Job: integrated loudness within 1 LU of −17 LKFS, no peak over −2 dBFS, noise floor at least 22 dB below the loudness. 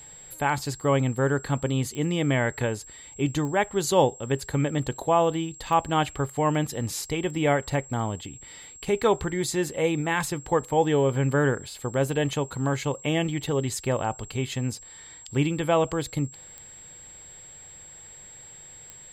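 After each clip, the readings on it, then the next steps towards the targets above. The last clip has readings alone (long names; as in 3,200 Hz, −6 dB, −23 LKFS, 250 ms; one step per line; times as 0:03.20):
number of clicks 5; interfering tone 7,600 Hz; level of the tone −44 dBFS; integrated loudness −26.0 LKFS; sample peak −8.0 dBFS; target loudness −17.0 LKFS
→ click removal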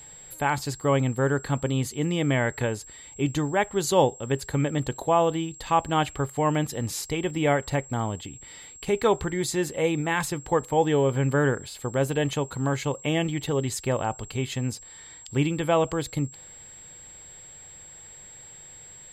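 number of clicks 0; interfering tone 7,600 Hz; level of the tone −44 dBFS
→ notch filter 7,600 Hz, Q 30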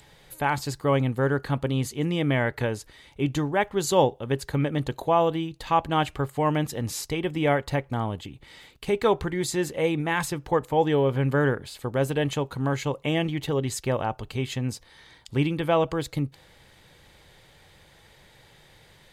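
interfering tone none found; integrated loudness −26.0 LKFS; sample peak −7.5 dBFS; target loudness −17.0 LKFS
→ level +9 dB
brickwall limiter −2 dBFS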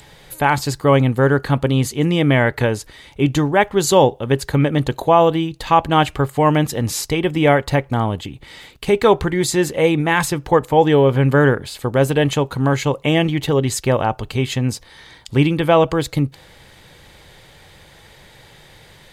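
integrated loudness −17.0 LKFS; sample peak −2.0 dBFS; background noise floor −47 dBFS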